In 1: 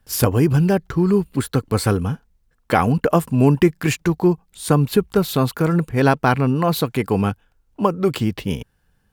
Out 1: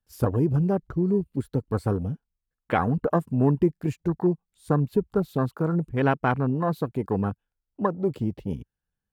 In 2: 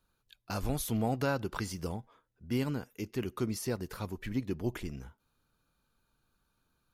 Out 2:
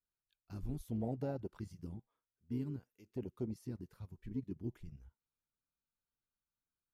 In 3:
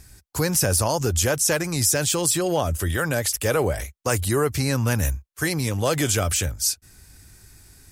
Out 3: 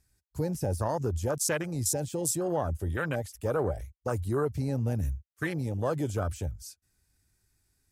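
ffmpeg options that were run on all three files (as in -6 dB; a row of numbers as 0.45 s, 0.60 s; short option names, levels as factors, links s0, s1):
-af "afwtdn=0.0562,volume=0.473"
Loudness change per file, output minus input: -7.0 LU, -8.5 LU, -9.0 LU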